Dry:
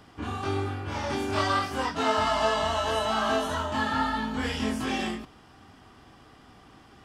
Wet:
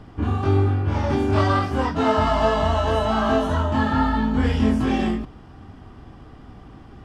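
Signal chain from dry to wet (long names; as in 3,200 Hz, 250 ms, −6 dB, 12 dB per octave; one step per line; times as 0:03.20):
spectral tilt −3 dB per octave
level +4 dB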